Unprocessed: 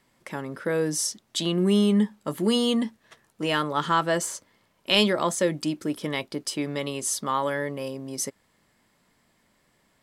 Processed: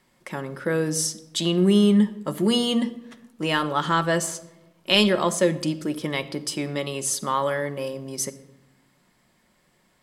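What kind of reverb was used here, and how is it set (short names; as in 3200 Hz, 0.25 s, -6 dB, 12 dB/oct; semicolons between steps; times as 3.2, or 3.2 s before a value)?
shoebox room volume 3800 m³, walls furnished, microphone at 0.96 m; gain +1.5 dB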